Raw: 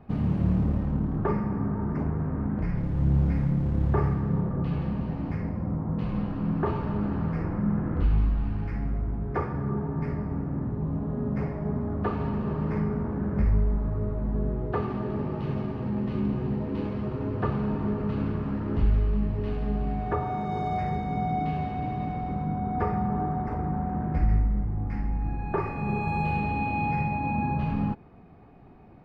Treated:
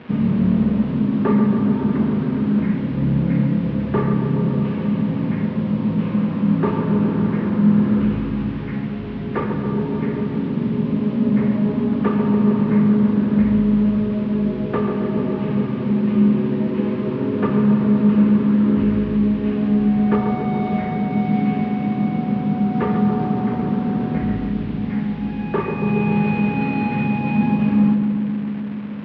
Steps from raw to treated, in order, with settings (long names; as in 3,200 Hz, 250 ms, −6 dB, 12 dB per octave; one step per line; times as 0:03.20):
linear delta modulator 32 kbit/s, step −40 dBFS
loudspeaker in its box 180–3,000 Hz, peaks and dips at 220 Hz +7 dB, 320 Hz −3 dB, 740 Hz −10 dB, 1,300 Hz −3 dB
on a send: feedback echo with a low-pass in the loop 139 ms, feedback 83%, low-pass 1,200 Hz, level −6 dB
on the sum: level +8.5 dB